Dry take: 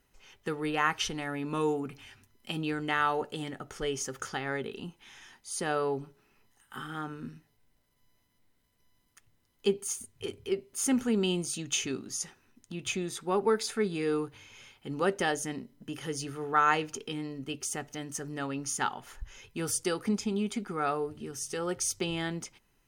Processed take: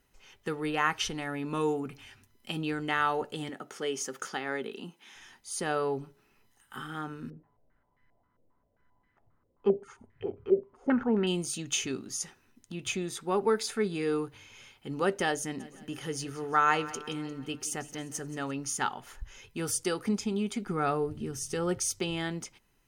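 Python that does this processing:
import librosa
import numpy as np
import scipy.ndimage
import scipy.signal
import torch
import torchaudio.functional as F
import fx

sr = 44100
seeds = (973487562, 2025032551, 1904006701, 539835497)

y = fx.highpass(x, sr, hz=180.0, slope=24, at=(3.49, 5.16))
y = fx.filter_held_lowpass(y, sr, hz=7.5, low_hz=520.0, high_hz=1800.0, at=(7.3, 11.27))
y = fx.echo_feedback(y, sr, ms=176, feedback_pct=53, wet_db=-17.0, at=(15.59, 18.5), fade=0.02)
y = fx.low_shelf(y, sr, hz=240.0, db=10.0, at=(20.66, 21.79))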